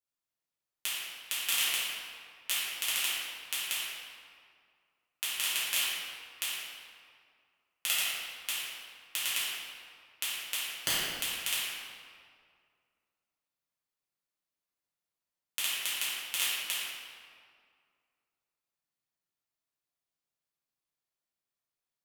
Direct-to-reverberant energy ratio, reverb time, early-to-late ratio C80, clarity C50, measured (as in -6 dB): -11.5 dB, 2.1 s, -1.0 dB, -3.5 dB